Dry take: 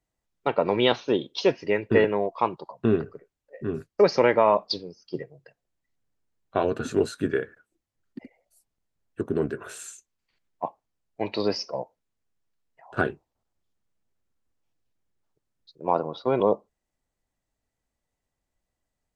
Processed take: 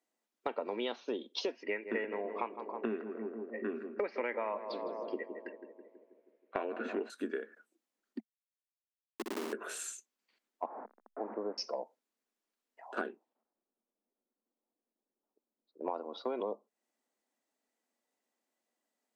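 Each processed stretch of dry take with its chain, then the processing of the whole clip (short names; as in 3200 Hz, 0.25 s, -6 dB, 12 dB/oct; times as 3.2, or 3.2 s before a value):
1.63–7.1 synth low-pass 2200 Hz, resonance Q 3.1 + tape echo 0.161 s, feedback 71%, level -11 dB, low-pass 1100 Hz
8.2–9.53 Schmitt trigger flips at -26 dBFS + flutter echo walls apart 10.6 m, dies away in 1.1 s
10.66–11.58 delta modulation 64 kbps, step -26.5 dBFS + Bessel low-pass 800 Hz, order 8 + low shelf 480 Hz -9 dB
13.06–15.94 low-pass opened by the level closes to 820 Hz, open at -35 dBFS + high shelf 4100 Hz -9 dB
whole clip: elliptic high-pass 220 Hz, stop band 40 dB; compressor 6:1, threshold -34 dBFS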